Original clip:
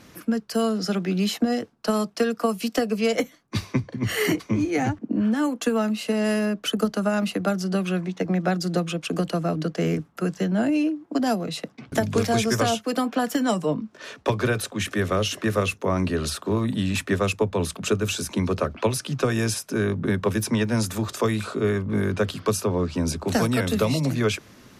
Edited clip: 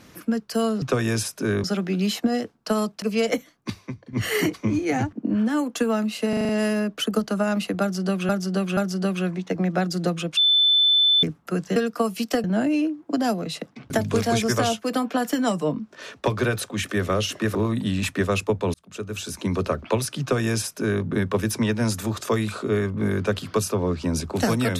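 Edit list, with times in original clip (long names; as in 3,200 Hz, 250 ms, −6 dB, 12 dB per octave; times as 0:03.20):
0:02.20–0:02.88: move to 0:10.46
0:03.56–0:03.99: clip gain −10 dB
0:06.15: stutter 0.04 s, 6 plays
0:07.47–0:07.95: repeat, 3 plays
0:09.07–0:09.93: beep over 3,520 Hz −14.5 dBFS
0:15.57–0:16.47: remove
0:17.66–0:18.50: fade in
0:19.13–0:19.95: duplicate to 0:00.82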